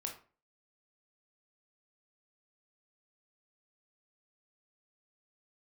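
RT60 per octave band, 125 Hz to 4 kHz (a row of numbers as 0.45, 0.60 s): 0.45, 0.45, 0.40, 0.40, 0.35, 0.25 s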